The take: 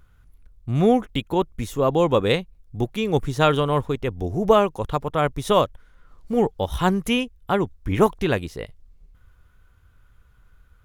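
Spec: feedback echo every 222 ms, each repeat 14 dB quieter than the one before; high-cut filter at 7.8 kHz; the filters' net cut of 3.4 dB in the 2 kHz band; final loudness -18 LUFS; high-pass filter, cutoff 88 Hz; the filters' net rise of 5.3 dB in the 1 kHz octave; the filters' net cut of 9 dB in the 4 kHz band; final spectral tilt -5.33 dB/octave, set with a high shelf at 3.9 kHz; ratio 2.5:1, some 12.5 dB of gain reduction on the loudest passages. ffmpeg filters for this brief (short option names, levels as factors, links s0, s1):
-af "highpass=88,lowpass=7800,equalizer=f=1000:t=o:g=8.5,equalizer=f=2000:t=o:g=-4.5,highshelf=f=3900:g=-8,equalizer=f=4000:t=o:g=-6.5,acompressor=threshold=0.0398:ratio=2.5,aecho=1:1:222|444:0.2|0.0399,volume=3.98"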